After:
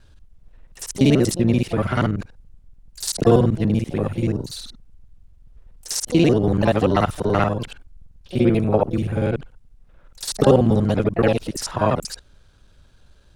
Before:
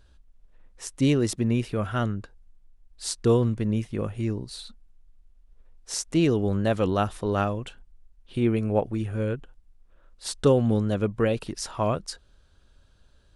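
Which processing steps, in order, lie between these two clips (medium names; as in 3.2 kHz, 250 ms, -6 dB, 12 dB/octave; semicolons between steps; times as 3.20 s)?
time reversed locally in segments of 48 ms; harmony voices +7 st -11 dB; trim +6 dB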